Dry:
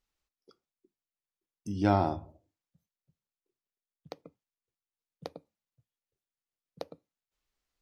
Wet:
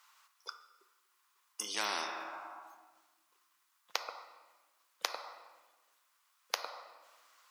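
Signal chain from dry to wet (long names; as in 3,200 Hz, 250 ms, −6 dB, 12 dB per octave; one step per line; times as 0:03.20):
four-pole ladder high-pass 950 Hz, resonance 65%
convolution reverb RT60 1.3 s, pre-delay 8 ms, DRR 11 dB
wrong playback speed 24 fps film run at 25 fps
every bin compressed towards the loudest bin 4 to 1
level +14.5 dB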